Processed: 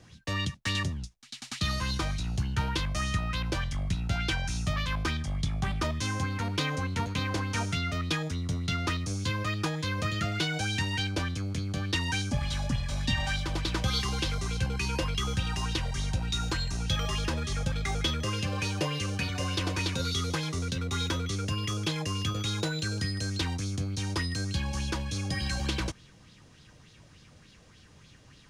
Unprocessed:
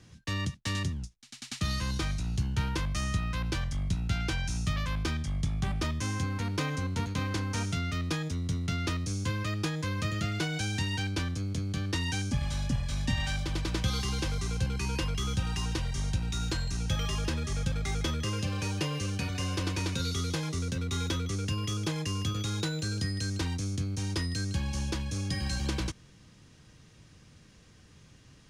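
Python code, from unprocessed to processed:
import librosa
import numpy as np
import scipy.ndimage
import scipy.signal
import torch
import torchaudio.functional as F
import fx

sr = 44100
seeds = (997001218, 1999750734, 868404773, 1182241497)

y = fx.bell_lfo(x, sr, hz=3.4, low_hz=570.0, high_hz=4100.0, db=10)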